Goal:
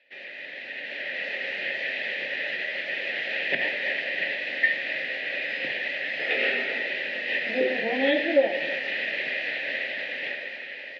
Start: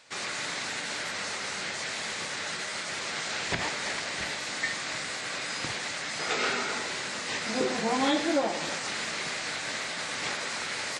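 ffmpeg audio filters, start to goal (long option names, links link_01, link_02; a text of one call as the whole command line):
ffmpeg -i in.wav -filter_complex "[0:a]asplit=3[link_01][link_02][link_03];[link_01]bandpass=frequency=530:width_type=q:width=8,volume=0dB[link_04];[link_02]bandpass=frequency=1840:width_type=q:width=8,volume=-6dB[link_05];[link_03]bandpass=frequency=2480:width_type=q:width=8,volume=-9dB[link_06];[link_04][link_05][link_06]amix=inputs=3:normalize=0,highpass=frequency=130:width=0.5412,highpass=frequency=130:width=1.3066,equalizer=frequency=140:width_type=q:width=4:gain=4,equalizer=frequency=260:width_type=q:width=4:gain=6,equalizer=frequency=490:width_type=q:width=4:gain=-9,equalizer=frequency=1400:width_type=q:width=4:gain=-7,equalizer=frequency=2100:width_type=q:width=4:gain=5,equalizer=frequency=3100:width_type=q:width=4:gain=4,lowpass=frequency=4100:width=0.5412,lowpass=frequency=4100:width=1.3066,dynaudnorm=framelen=150:gausssize=13:maxgain=10dB,volume=5.5dB" out.wav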